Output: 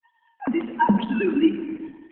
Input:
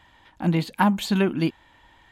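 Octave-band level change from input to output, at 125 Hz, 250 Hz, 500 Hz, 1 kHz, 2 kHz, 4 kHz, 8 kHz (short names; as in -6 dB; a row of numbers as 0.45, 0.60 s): -7.0 dB, +2.0 dB, +1.5 dB, +2.0 dB, 0.0 dB, -5.0 dB, under -40 dB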